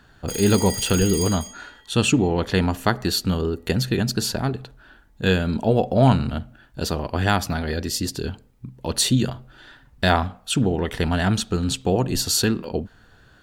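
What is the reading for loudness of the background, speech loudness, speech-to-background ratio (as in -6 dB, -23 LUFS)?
-28.5 LUFS, -22.0 LUFS, 6.5 dB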